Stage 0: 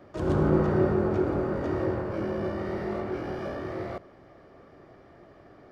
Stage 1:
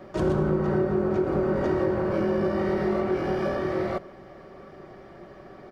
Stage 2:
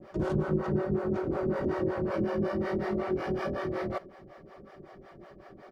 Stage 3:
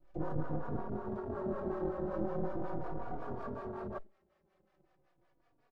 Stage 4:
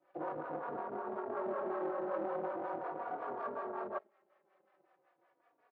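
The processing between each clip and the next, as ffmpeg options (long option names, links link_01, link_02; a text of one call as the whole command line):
ffmpeg -i in.wav -af "aecho=1:1:5.3:0.47,acompressor=threshold=-26dB:ratio=12,volume=6dB" out.wav
ffmpeg -i in.wav -filter_complex "[0:a]acrossover=split=450[link_01][link_02];[link_01]aeval=exprs='val(0)*(1-1/2+1/2*cos(2*PI*5.4*n/s))':channel_layout=same[link_03];[link_02]aeval=exprs='val(0)*(1-1/2-1/2*cos(2*PI*5.4*n/s))':channel_layout=same[link_04];[link_03][link_04]amix=inputs=2:normalize=0" out.wav
ffmpeg -i in.wav -filter_complex "[0:a]aeval=exprs='max(val(0),0)':channel_layout=same,afwtdn=0.0112,asplit=2[link_01][link_02];[link_02]adelay=3.5,afreqshift=-0.4[link_03];[link_01][link_03]amix=inputs=2:normalize=1" out.wav
ffmpeg -i in.wav -filter_complex "[0:a]asplit=2[link_01][link_02];[link_02]volume=35.5dB,asoftclip=hard,volume=-35.5dB,volume=-3.5dB[link_03];[link_01][link_03]amix=inputs=2:normalize=0,highpass=520,lowpass=2100,volume=1.5dB" out.wav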